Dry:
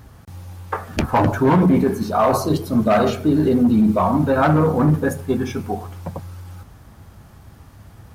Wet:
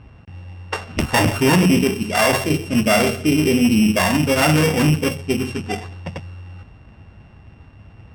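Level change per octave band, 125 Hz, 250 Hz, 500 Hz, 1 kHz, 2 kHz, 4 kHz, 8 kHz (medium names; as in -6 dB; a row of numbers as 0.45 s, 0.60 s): 0.0 dB, 0.0 dB, -1.0 dB, -2.5 dB, +8.0 dB, +12.5 dB, +11.5 dB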